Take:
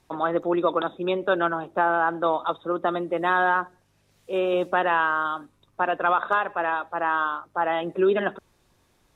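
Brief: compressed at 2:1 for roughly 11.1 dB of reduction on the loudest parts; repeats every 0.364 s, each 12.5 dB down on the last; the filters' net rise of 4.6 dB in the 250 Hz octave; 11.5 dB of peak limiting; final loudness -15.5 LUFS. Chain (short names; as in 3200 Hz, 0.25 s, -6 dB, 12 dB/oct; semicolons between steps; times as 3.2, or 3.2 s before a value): bell 250 Hz +8.5 dB; compressor 2:1, threshold -34 dBFS; limiter -28.5 dBFS; feedback echo 0.364 s, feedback 24%, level -12.5 dB; gain +22.5 dB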